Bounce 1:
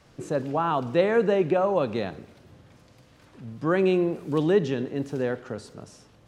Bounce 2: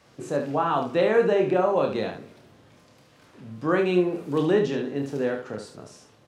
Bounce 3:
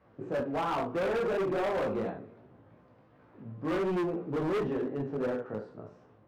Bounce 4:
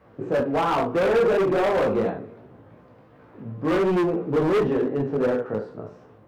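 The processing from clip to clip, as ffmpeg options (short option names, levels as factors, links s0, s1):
-filter_complex "[0:a]highpass=f=170:p=1,asplit=2[s0][s1];[s1]aecho=0:1:28|72:0.562|0.422[s2];[s0][s2]amix=inputs=2:normalize=0"
-af "flanger=delay=15.5:depth=3.6:speed=2.8,lowpass=1300,volume=23.7,asoftclip=hard,volume=0.0422"
-af "equalizer=f=460:w=7:g=3.5,volume=2.66"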